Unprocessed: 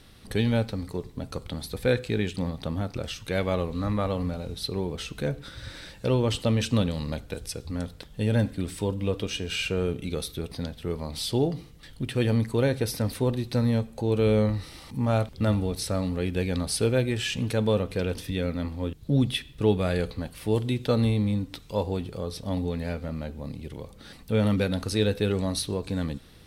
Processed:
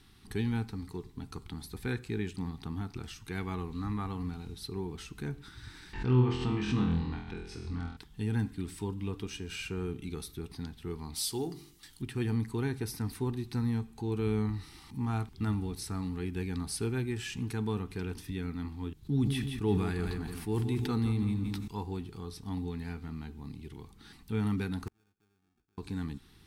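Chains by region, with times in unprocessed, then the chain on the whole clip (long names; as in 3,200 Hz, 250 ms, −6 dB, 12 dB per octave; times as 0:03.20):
0:05.93–0:07.97: low-pass filter 3,400 Hz + flutter between parallel walls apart 4.1 metres, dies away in 0.62 s + background raised ahead of every attack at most 94 dB per second
0:11.14–0:12.02: bass and treble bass −7 dB, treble +11 dB + hum removal 48.67 Hz, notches 8
0:18.96–0:21.68: repeating echo 168 ms, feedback 37%, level −9.5 dB + level that may fall only so fast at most 30 dB per second
0:24.87–0:25.78: sample-rate reduction 1,000 Hz + gate with flip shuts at −27 dBFS, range −41 dB
whole clip: Chebyshev band-stop filter 400–800 Hz, order 2; dynamic equaliser 3,400 Hz, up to −6 dB, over −49 dBFS, Q 1.5; level −6 dB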